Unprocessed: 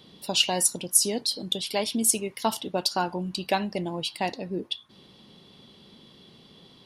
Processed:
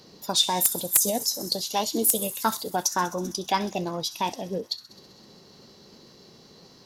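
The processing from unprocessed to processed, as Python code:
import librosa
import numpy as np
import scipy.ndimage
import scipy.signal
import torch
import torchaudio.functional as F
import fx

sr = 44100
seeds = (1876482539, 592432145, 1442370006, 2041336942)

y = fx.echo_wet_highpass(x, sr, ms=65, feedback_pct=78, hz=5100.0, wet_db=-11)
y = fx.formant_shift(y, sr, semitones=4)
y = (np.mod(10.0 ** (8.0 / 20.0) * y + 1.0, 2.0) - 1.0) / 10.0 ** (8.0 / 20.0)
y = F.gain(torch.from_numpy(y), 1.0).numpy()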